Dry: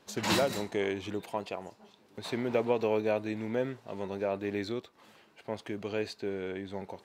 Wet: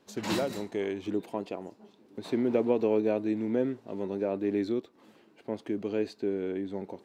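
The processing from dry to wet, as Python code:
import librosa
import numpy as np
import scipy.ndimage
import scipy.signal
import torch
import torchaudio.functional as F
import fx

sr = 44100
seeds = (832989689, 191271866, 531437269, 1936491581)

y = fx.peak_eq(x, sr, hz=290.0, db=fx.steps((0.0, 7.0), (1.06, 13.5)), octaves=1.6)
y = y * 10.0 ** (-5.5 / 20.0)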